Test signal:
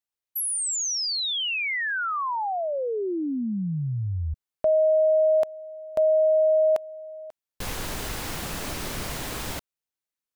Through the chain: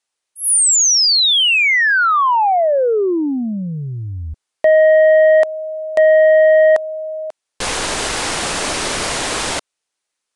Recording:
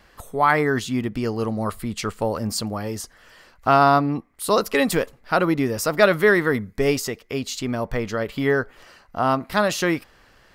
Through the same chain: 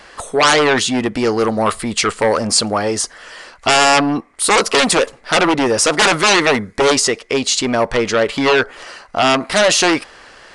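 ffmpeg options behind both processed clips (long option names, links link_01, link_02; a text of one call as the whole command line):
ffmpeg -i in.wav -af "aeval=exprs='0.631*sin(PI/2*5.01*val(0)/0.631)':channel_layout=same,aresample=22050,aresample=44100,bass=frequency=250:gain=-12,treble=frequency=4000:gain=1,volume=-3.5dB" out.wav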